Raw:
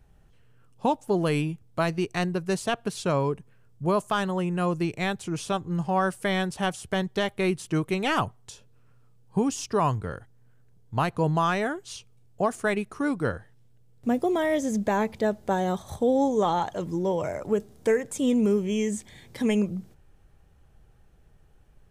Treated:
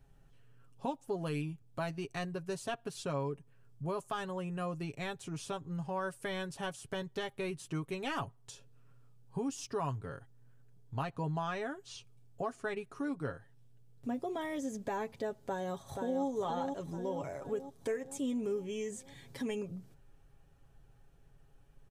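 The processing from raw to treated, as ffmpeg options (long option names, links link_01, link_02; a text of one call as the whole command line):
ffmpeg -i in.wav -filter_complex "[0:a]asettb=1/sr,asplit=3[link_01][link_02][link_03];[link_01]atrim=end=11.034[link_04];[link_02]atrim=start=11.03:end=14.41,asetpts=PTS-STARTPTS,afade=type=in:duration=0.004:curve=qsin,afade=type=out:start_time=3.376:duration=0.004:curve=qsin,acrossover=split=6800[link_05][link_06];[link_06]acompressor=threshold=-58dB:ratio=4:attack=1:release=60[link_07];[link_05][link_07]amix=inputs=2:normalize=0[link_08];[link_03]atrim=start=14.406[link_09];[link_04][link_08]acrossfade=duration=0.004:curve1=hsin:curve2=qsin[link_10];[link_10][link_09]acrossfade=duration=0.004:curve1=qsin:curve2=hsin,asplit=2[link_11][link_12];[link_12]afade=type=in:start_time=15.46:duration=0.01,afade=type=out:start_time=16.25:duration=0.01,aecho=0:1:480|960|1440|1920|2400|2880|3360:0.501187|0.275653|0.151609|0.083385|0.0458618|0.025224|0.0138732[link_13];[link_11][link_13]amix=inputs=2:normalize=0,bandreject=frequency=2100:width=21,aecho=1:1:7.3:0.55,acompressor=threshold=-41dB:ratio=1.5,volume=-5.5dB" out.wav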